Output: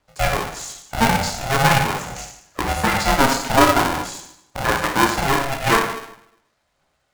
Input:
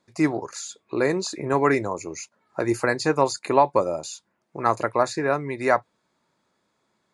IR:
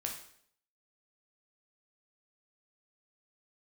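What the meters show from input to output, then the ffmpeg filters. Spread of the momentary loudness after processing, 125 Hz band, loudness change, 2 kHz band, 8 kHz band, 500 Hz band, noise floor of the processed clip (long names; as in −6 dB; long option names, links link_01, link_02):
16 LU, +8.5 dB, +4.5 dB, +8.5 dB, +8.5 dB, −1.0 dB, −69 dBFS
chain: -filter_complex "[0:a]bandreject=frequency=108.2:width_type=h:width=4,bandreject=frequency=216.4:width_type=h:width=4,bandreject=frequency=324.6:width_type=h:width=4,bandreject=frequency=432.8:width_type=h:width=4,bandreject=frequency=541:width_type=h:width=4,bandreject=frequency=649.2:width_type=h:width=4,bandreject=frequency=757.4:width_type=h:width=4,bandreject=frequency=865.6:width_type=h:width=4,bandreject=frequency=973.8:width_type=h:width=4,bandreject=frequency=1082:width_type=h:width=4,bandreject=frequency=1190.2:width_type=h:width=4,bandreject=frequency=1298.4:width_type=h:width=4,bandreject=frequency=1406.6:width_type=h:width=4,bandreject=frequency=1514.8:width_type=h:width=4,bandreject=frequency=1623:width_type=h:width=4,bandreject=frequency=1731.2:width_type=h:width=4,bandreject=frequency=1839.4:width_type=h:width=4,bandreject=frequency=1947.6:width_type=h:width=4,bandreject=frequency=2055.8:width_type=h:width=4,bandreject=frequency=2164:width_type=h:width=4,bandreject=frequency=2272.2:width_type=h:width=4,bandreject=frequency=2380.4:width_type=h:width=4,bandreject=frequency=2488.6:width_type=h:width=4,bandreject=frequency=2596.8:width_type=h:width=4,bandreject=frequency=2705:width_type=h:width=4,bandreject=frequency=2813.2:width_type=h:width=4,bandreject=frequency=2921.4:width_type=h:width=4,aphaser=in_gain=1:out_gain=1:delay=4.5:decay=0.49:speed=0.44:type=triangular,afreqshift=65,asplit=2[link_01][link_02];[link_02]acrusher=bits=3:mix=0:aa=0.000001,volume=-11dB[link_03];[link_01][link_03]amix=inputs=2:normalize=0[link_04];[1:a]atrim=start_sample=2205,asetrate=35721,aresample=44100[link_05];[link_04][link_05]afir=irnorm=-1:irlink=0,aeval=exprs='val(0)*sgn(sin(2*PI*340*n/s))':channel_layout=same"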